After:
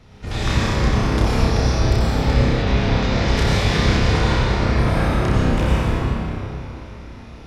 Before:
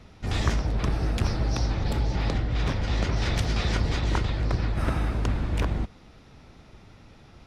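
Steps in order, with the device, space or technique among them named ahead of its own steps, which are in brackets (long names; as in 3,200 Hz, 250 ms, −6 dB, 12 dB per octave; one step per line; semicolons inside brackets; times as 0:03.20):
tunnel (flutter between parallel walls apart 5.3 metres, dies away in 0.53 s; convolution reverb RT60 3.4 s, pre-delay 81 ms, DRR −7 dB)
0:02.62–0:03.28: low-pass filter 6,800 Hz 12 dB per octave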